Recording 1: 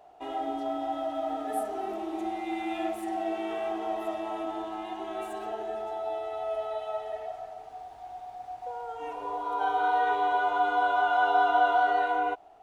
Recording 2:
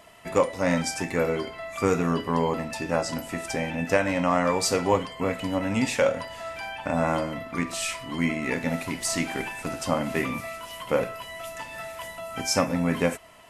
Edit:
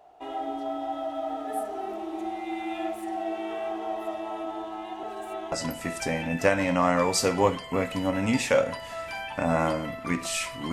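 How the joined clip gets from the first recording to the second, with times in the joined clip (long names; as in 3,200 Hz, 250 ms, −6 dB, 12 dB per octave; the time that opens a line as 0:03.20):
recording 1
0:05.03–0:05.52: reverse
0:05.52: continue with recording 2 from 0:03.00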